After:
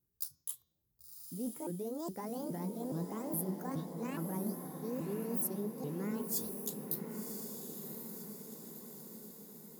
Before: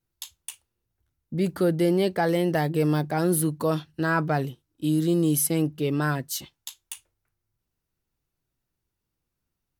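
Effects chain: repeated pitch sweeps +10 st, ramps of 0.417 s; HPF 53 Hz; bell 2500 Hz -13.5 dB 2.9 oct; de-hum 363.7 Hz, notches 19; reverse; compressor 6:1, threshold -38 dBFS, peak gain reduction 16 dB; reverse; fifteen-band EQ 100 Hz -5 dB, 630 Hz -7 dB, 2500 Hz -6 dB, 16000 Hz +6 dB; diffused feedback echo 1.063 s, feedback 59%, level -5.5 dB; gain +2 dB

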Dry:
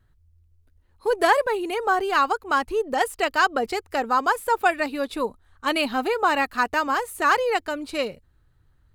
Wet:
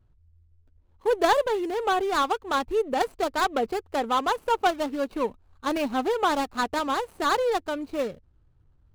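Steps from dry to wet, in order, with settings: median filter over 25 samples

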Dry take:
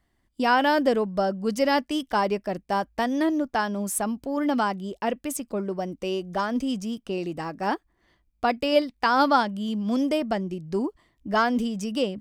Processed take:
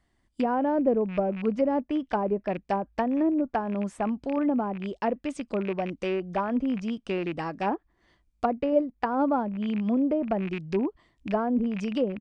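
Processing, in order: rattling part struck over -35 dBFS, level -25 dBFS; treble ducked by the level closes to 610 Hz, closed at -20 dBFS; downsampling 22050 Hz

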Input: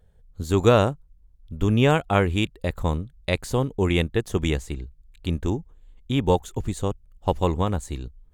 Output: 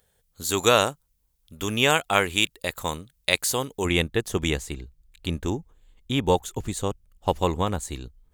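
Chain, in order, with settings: tilt +4 dB/oct, from 3.84 s +1.5 dB/oct; gain +1 dB

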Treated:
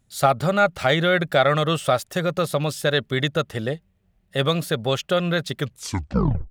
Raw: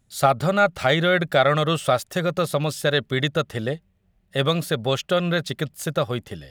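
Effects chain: tape stop at the end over 0.93 s

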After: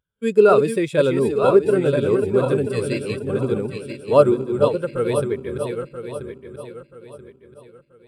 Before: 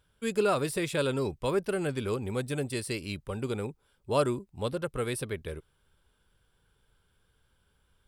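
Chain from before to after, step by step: regenerating reverse delay 0.491 s, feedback 69%, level -4 dB; low shelf 75 Hz -10.5 dB; in parallel at -4 dB: short-mantissa float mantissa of 2-bit; on the sum: spectral expander 1.5:1; gain +7 dB

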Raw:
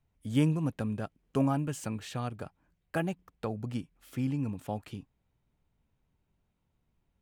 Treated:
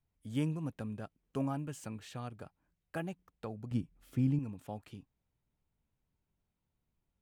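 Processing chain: 3.71–4.39 low shelf 390 Hz +11.5 dB; gain -7.5 dB

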